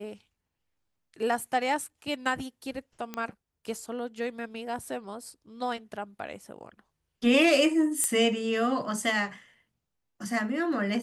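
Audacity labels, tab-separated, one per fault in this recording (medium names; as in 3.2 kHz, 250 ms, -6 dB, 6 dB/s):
3.140000	3.140000	pop -19 dBFS
8.040000	8.040000	pop -11 dBFS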